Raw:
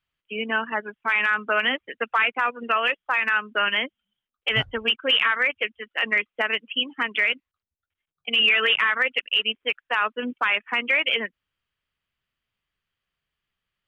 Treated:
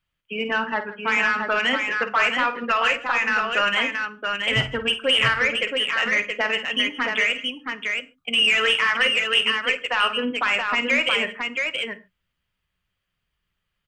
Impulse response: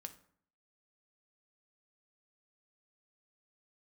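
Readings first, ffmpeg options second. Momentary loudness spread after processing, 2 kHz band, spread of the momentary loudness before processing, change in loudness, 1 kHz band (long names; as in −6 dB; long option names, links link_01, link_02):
8 LU, +2.0 dB, 9 LU, +1.5 dB, +2.5 dB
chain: -filter_complex "[0:a]asoftclip=type=tanh:threshold=-13.5dB,aecho=1:1:51|162|674:0.282|0.106|0.596,asplit=2[link_01][link_02];[1:a]atrim=start_sample=2205,atrim=end_sample=6615,lowshelf=frequency=180:gain=10.5[link_03];[link_02][link_03]afir=irnorm=-1:irlink=0,volume=8.5dB[link_04];[link_01][link_04]amix=inputs=2:normalize=0,volume=-6dB"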